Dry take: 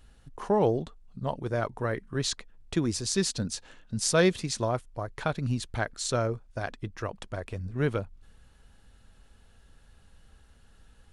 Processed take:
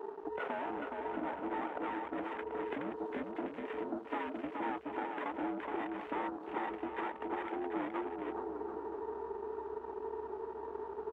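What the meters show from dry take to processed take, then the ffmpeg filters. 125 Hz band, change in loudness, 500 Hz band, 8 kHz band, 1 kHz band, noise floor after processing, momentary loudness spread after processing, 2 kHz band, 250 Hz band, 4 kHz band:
-27.5 dB, -9.5 dB, -8.0 dB, under -40 dB, -1.5 dB, -47 dBFS, 4 LU, -7.5 dB, -7.0 dB, -21.0 dB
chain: -filter_complex "[0:a]afftfilt=real='real(if(between(b,1,1008),(2*floor((b-1)/24)+1)*24-b,b),0)':imag='imag(if(between(b,1,1008),(2*floor((b-1)/24)+1)*24-b,b),0)*if(between(b,1,1008),-1,1)':win_size=2048:overlap=0.75,asplit=2[s0][s1];[s1]highpass=f=720:p=1,volume=22.4,asoftclip=type=tanh:threshold=0.355[s2];[s0][s2]amix=inputs=2:normalize=0,lowpass=f=1300:p=1,volume=0.501,acompressor=threshold=0.02:ratio=8,aresample=11025,aeval=exprs='max(val(0),0)':c=same,aresample=44100,highpass=f=310:t=q:w=0.5412,highpass=f=310:t=q:w=1.307,lowpass=f=3300:t=q:w=0.5176,lowpass=f=3300:t=q:w=0.7071,lowpass=f=3300:t=q:w=1.932,afreqshift=-69,aeval=exprs='sgn(val(0))*max(abs(val(0))-0.00178,0)':c=same,asplit=2[s3][s4];[s4]aecho=0:1:420|735|971.2|1148|1281:0.631|0.398|0.251|0.158|0.1[s5];[s3][s5]amix=inputs=2:normalize=0,afwtdn=0.00355,adynamicequalizer=threshold=0.002:dfrequency=1600:dqfactor=0.7:tfrequency=1600:tqfactor=0.7:attack=5:release=100:ratio=0.375:range=2:mode=cutabove:tftype=highshelf,volume=1.5"

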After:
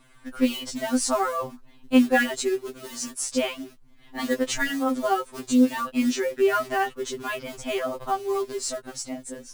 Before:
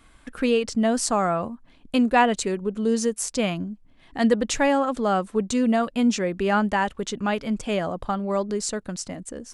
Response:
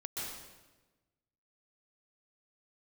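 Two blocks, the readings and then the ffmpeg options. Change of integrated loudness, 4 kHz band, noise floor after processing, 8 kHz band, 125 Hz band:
-2.0 dB, 0.0 dB, -52 dBFS, -0.5 dB, -14.5 dB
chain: -af "acrusher=bits=5:mode=log:mix=0:aa=0.000001,afftfilt=real='re*2.45*eq(mod(b,6),0)':imag='im*2.45*eq(mod(b,6),0)':win_size=2048:overlap=0.75,volume=1.19"

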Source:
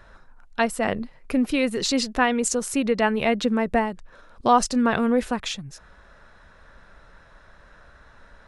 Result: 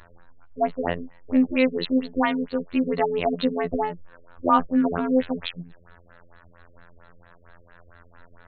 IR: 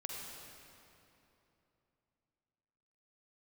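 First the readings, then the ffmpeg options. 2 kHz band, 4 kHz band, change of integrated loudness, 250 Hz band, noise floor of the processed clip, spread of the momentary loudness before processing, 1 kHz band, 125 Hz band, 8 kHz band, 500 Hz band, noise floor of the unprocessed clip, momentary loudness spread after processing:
-5.5 dB, -6.0 dB, -1.0 dB, 0.0 dB, -53 dBFS, 11 LU, -2.0 dB, -0.5 dB, under -40 dB, -1.0 dB, -52 dBFS, 9 LU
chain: -af "afftfilt=real='hypot(re,im)*cos(PI*b)':imag='0':win_size=2048:overlap=0.75,afftfilt=real='re*lt(b*sr/1024,530*pow(4500/530,0.5+0.5*sin(2*PI*4.4*pts/sr)))':imag='im*lt(b*sr/1024,530*pow(4500/530,0.5+0.5*sin(2*PI*4.4*pts/sr)))':win_size=1024:overlap=0.75,volume=1.58"

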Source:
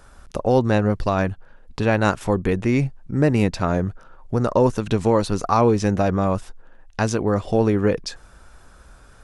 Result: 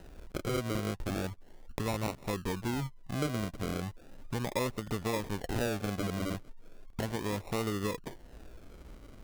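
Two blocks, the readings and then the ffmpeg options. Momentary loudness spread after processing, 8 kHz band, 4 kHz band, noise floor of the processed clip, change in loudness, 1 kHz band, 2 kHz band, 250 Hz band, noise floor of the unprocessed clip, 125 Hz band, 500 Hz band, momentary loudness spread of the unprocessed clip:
19 LU, -6.5 dB, -6.0 dB, -53 dBFS, -14.5 dB, -15.5 dB, -11.5 dB, -14.5 dB, -49 dBFS, -14.0 dB, -16.0 dB, 9 LU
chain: -af "acompressor=threshold=0.0126:ratio=2,acrusher=samples=39:mix=1:aa=0.000001:lfo=1:lforange=23.4:lforate=0.36,volume=0.75"

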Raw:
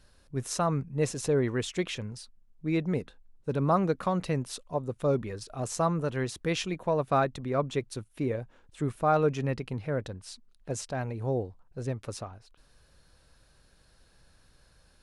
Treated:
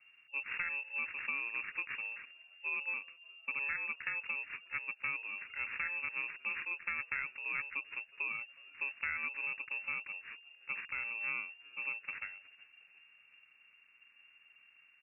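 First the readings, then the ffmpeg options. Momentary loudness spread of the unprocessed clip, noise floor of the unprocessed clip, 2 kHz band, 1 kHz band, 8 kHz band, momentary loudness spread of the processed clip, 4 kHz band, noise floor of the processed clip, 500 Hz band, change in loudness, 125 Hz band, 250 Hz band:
14 LU, -63 dBFS, +7.0 dB, -16.5 dB, under -40 dB, 8 LU, under -10 dB, -65 dBFS, -32.0 dB, -7.0 dB, under -35 dB, -32.0 dB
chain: -filter_complex "[0:a]equalizer=f=420:w=1.5:g=-3,acompressor=threshold=0.0282:ratio=6,acrusher=samples=21:mix=1:aa=0.000001,asplit=5[s0][s1][s2][s3][s4];[s1]adelay=364,afreqshift=-140,volume=0.0708[s5];[s2]adelay=728,afreqshift=-280,volume=0.0398[s6];[s3]adelay=1092,afreqshift=-420,volume=0.0221[s7];[s4]adelay=1456,afreqshift=-560,volume=0.0124[s8];[s0][s5][s6][s7][s8]amix=inputs=5:normalize=0,lowpass=f=2400:t=q:w=0.5098,lowpass=f=2400:t=q:w=0.6013,lowpass=f=2400:t=q:w=0.9,lowpass=f=2400:t=q:w=2.563,afreqshift=-2800,volume=0.668"

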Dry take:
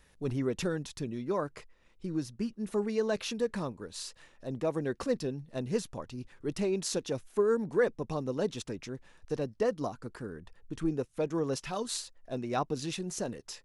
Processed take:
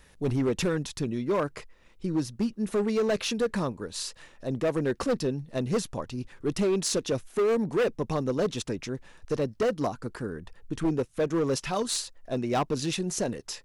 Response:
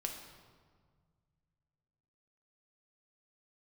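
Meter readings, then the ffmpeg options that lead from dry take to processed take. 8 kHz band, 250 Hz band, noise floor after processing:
+6.5 dB, +5.5 dB, -57 dBFS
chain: -af "asoftclip=type=hard:threshold=0.0422,volume=2.11"

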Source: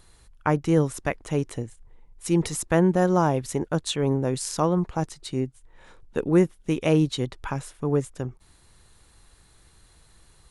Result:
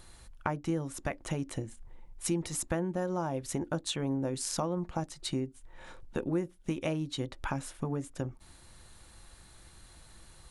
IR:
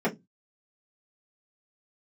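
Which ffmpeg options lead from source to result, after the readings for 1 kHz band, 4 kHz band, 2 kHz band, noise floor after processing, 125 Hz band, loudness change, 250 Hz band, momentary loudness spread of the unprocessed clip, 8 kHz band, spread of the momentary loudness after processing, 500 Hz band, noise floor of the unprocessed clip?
-9.5 dB, -5.0 dB, -8.0 dB, -56 dBFS, -10.5 dB, -10.0 dB, -10.0 dB, 12 LU, -4.0 dB, 8 LU, -11.0 dB, -57 dBFS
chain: -filter_complex "[0:a]equalizer=f=430:t=o:w=0.2:g=-6.5,acompressor=threshold=0.0251:ratio=6,asplit=2[s0][s1];[1:a]atrim=start_sample=2205,asetrate=57330,aresample=44100[s2];[s1][s2]afir=irnorm=-1:irlink=0,volume=0.0668[s3];[s0][s3]amix=inputs=2:normalize=0,volume=1.19"

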